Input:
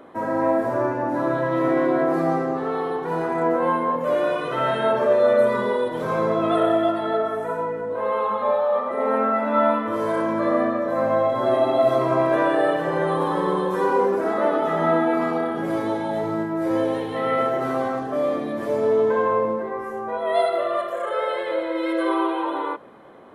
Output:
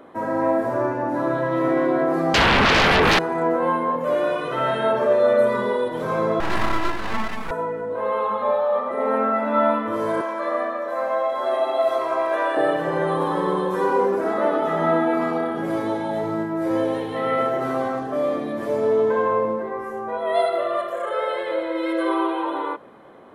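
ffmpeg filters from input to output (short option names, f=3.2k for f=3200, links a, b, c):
-filter_complex "[0:a]asettb=1/sr,asplit=3[a][b][c];[a]atrim=end=2.344[d];[b]atrim=start=2.34:end=3.19,asetpts=PTS-STARTPTS,afade=t=in:d=0.004:c=qsin,afade=t=out:st=0.846:d=0.004:c=qsin,aeval=exprs='0.224*sin(PI/2*6.31*val(0)/0.224)':c=same[e];[c]atrim=start=3.186[f];[d][e]acrossfade=d=0.004:c1=hsin:c2=qsin[g];[g][f]acrossfade=d=0.004:c1=qsin:c2=hsin,asettb=1/sr,asplit=3[h][i][j];[h]atrim=end=6.404[k];[i]atrim=start=6.4:end=7.51,asetpts=PTS-STARTPTS,afade=t=in:d=0.004:c=qsin,afade=t=out:st=1.106:d=0.004:c=qsin,aeval=exprs='abs(val(0))':c=same[l];[j]atrim=start=7.506[m];[k][l]acrossfade=d=0.004:c1=hsin:c2=qsin[n];[n][m]acrossfade=d=0.004:c1=qsin:c2=hsin,asettb=1/sr,asplit=3[o][p][q];[o]atrim=end=10.214[r];[p]atrim=start=10.21:end=12.57,asetpts=PTS-STARTPTS,afade=t=in:d=0.004:c=qsin,afade=t=out:st=2.356:d=0.004:c=qsin,highpass=580[s];[q]atrim=start=12.566[t];[r][s]acrossfade=d=0.004:c1=hsin:c2=qsin[u];[u][t]acrossfade=d=0.004:c1=qsin:c2=hsin"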